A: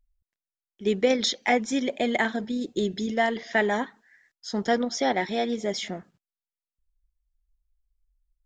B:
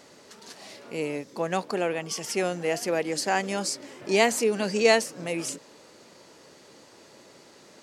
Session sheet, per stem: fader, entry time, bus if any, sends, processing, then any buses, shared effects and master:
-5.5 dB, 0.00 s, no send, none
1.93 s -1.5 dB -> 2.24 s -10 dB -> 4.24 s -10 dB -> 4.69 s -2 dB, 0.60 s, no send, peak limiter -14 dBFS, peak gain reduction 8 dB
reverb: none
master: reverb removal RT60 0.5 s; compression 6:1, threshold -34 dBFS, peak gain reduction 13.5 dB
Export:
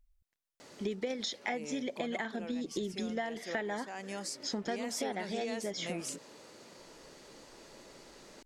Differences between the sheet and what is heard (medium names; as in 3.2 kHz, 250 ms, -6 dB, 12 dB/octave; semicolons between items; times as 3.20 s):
stem A -5.5 dB -> +2.0 dB; master: missing reverb removal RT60 0.5 s